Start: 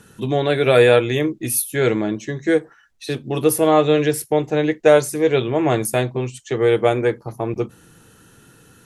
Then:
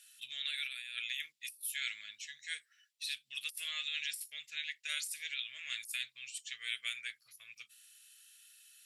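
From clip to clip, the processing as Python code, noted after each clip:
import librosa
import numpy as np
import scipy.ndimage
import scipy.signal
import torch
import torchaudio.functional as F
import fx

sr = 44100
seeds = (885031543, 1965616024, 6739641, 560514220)

y = scipy.signal.sosfilt(scipy.signal.cheby2(4, 50, 920.0, 'highpass', fs=sr, output='sos'), x)
y = fx.notch(y, sr, hz=6300.0, q=9.1)
y = fx.over_compress(y, sr, threshold_db=-32.0, ratio=-0.5)
y = y * librosa.db_to_amplitude(-7.0)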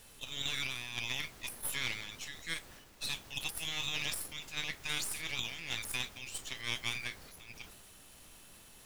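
y = np.where(x < 0.0, 10.0 ** (-12.0 / 20.0) * x, x)
y = fx.dmg_noise_colour(y, sr, seeds[0], colour='pink', level_db=-65.0)
y = fx.transient(y, sr, attack_db=1, sustain_db=7)
y = y * librosa.db_to_amplitude(4.5)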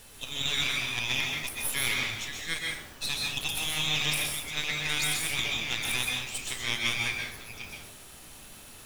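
y = fx.rev_plate(x, sr, seeds[1], rt60_s=0.59, hf_ratio=0.8, predelay_ms=115, drr_db=-0.5)
y = y * librosa.db_to_amplitude(5.5)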